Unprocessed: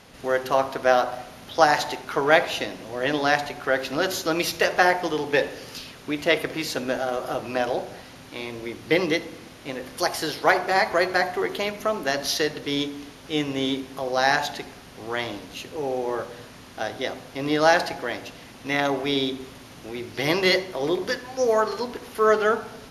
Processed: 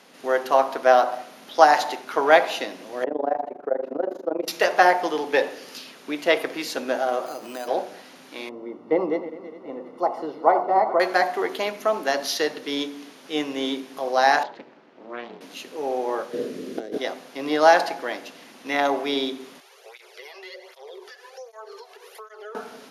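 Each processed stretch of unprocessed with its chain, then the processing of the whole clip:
0:03.04–0:04.48: drawn EQ curve 160 Hz 0 dB, 520 Hz +9 dB, 4,200 Hz −27 dB + downward compressor 2 to 1, threshold −21 dBFS + amplitude modulation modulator 25 Hz, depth 90%
0:07.26–0:07.68: high-frequency loss of the air 81 metres + downward compressor 2.5 to 1, threshold −31 dBFS + bad sample-rate conversion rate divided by 8×, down none, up hold
0:08.49–0:11.00: feedback delay that plays each chunk backwards 204 ms, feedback 63%, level −13 dB + Savitzky-Golay smoothing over 65 samples
0:14.43–0:15.41: head-to-tape spacing loss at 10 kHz 32 dB + ring modulation 120 Hz + highs frequency-modulated by the lows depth 0.26 ms
0:16.33–0:16.98: phase distortion by the signal itself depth 0.051 ms + low shelf with overshoot 610 Hz +11.5 dB, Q 3 + compressor whose output falls as the input rises −26 dBFS, ratio −0.5
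0:19.60–0:22.55: Chebyshev high-pass filter 380 Hz, order 10 + downward compressor 4 to 1, threshold −36 dBFS + through-zero flanger with one copy inverted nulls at 1.3 Hz, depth 2.2 ms
whole clip: dynamic equaliser 800 Hz, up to +6 dB, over −32 dBFS, Q 1.1; high-pass filter 210 Hz 24 dB per octave; level −1.5 dB

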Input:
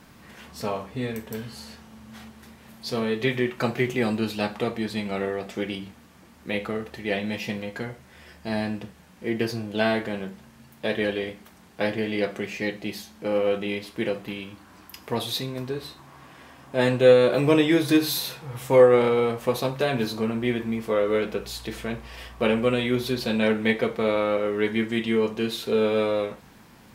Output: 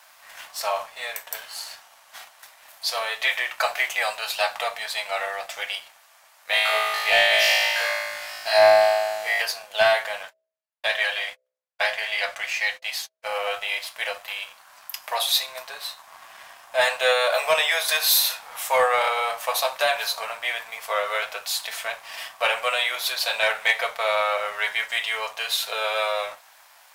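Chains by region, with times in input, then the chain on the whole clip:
0:06.49–0:09.42: parametric band 4,500 Hz +5 dB 0.35 octaves + flutter between parallel walls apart 3.2 metres, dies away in 1.5 s
0:10.23–0:13.25: meter weighting curve A + noise gate −45 dBFS, range −44 dB + hum removal 64.37 Hz, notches 10
whole clip: elliptic high-pass filter 630 Hz, stop band 50 dB; high-shelf EQ 5,200 Hz +6.5 dB; leveller curve on the samples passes 1; level +3 dB

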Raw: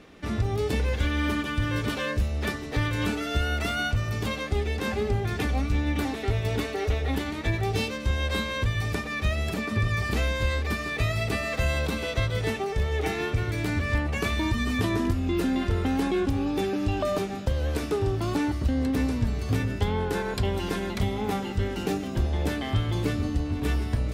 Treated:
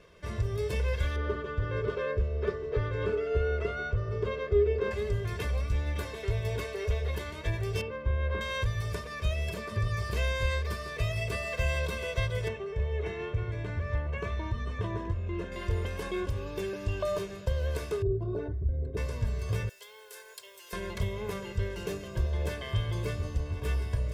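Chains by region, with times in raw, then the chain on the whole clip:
0:01.16–0:04.91: head-to-tape spacing loss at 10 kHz 26 dB + hollow resonant body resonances 420/1,300 Hz, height 15 dB
0:07.81–0:08.41: low-pass filter 1,500 Hz + parametric band 330 Hz +5 dB 0.3 octaves + double-tracking delay 40 ms −12 dB
0:12.48–0:15.52: high-pass filter 42 Hz + head-to-tape spacing loss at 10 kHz 21 dB + notch filter 4,800 Hz, Q 9.6
0:18.02–0:18.97: spectral envelope exaggerated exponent 2 + hum removal 57.3 Hz, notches 39 + hollow resonant body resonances 400/680/1,500/3,700 Hz, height 11 dB
0:19.69–0:20.73: high-pass with resonance 430 Hz, resonance Q 1.7 + first difference + bit-depth reduction 10 bits, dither triangular
whole clip: notch filter 4,000 Hz, Q 15; comb filter 1.9 ms, depth 91%; level −8 dB

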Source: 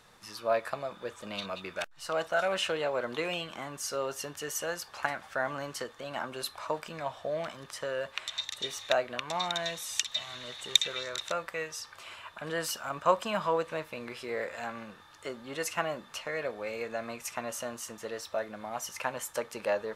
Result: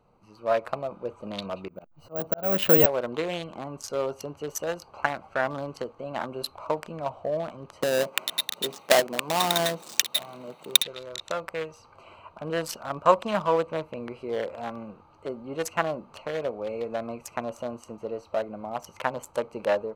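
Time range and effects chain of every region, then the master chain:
0:01.68–0:02.86: parametric band 180 Hz +14.5 dB 2.9 octaves + volume swells 405 ms + bad sample-rate conversion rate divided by 2×, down none, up zero stuff
0:07.82–0:10.83: each half-wave held at its own peak + high-pass filter 150 Hz 24 dB per octave
whole clip: adaptive Wiener filter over 25 samples; automatic gain control gain up to 6.5 dB

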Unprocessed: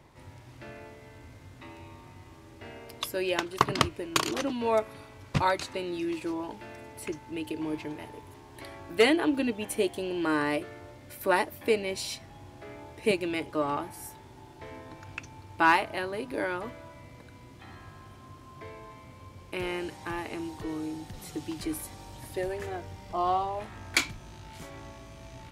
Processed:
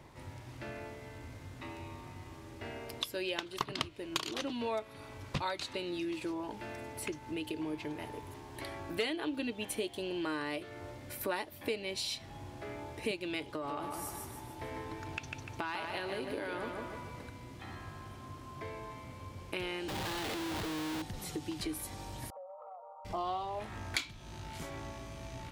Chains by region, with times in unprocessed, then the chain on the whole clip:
0:13.49–0:17.30: downward compressor, threshold −29 dBFS + repeating echo 149 ms, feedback 45%, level −5 dB
0:19.88–0:21.02: high-shelf EQ 2,200 Hz +4 dB + comparator with hysteresis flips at −46 dBFS
0:22.30–0:23.05: linear-phase brick-wall band-pass 480–1,400 Hz + downward compressor 8 to 1, threshold −47 dBFS
whole clip: dynamic equaliser 3,600 Hz, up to +8 dB, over −50 dBFS, Q 1.5; downward compressor 3 to 1, threshold −38 dBFS; level +1.5 dB

